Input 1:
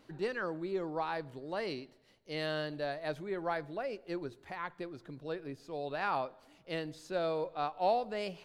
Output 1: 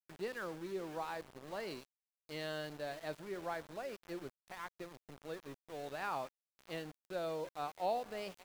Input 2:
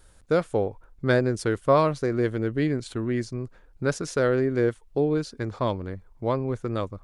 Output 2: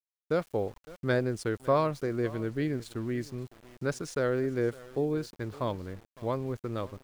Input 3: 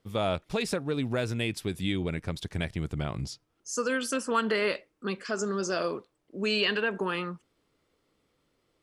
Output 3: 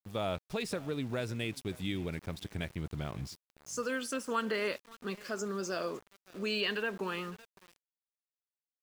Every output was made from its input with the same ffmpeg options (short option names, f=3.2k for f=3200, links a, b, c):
-af "aecho=1:1:559:0.1,aeval=exprs='val(0)*gte(abs(val(0)),0.0075)':c=same,volume=-6dB"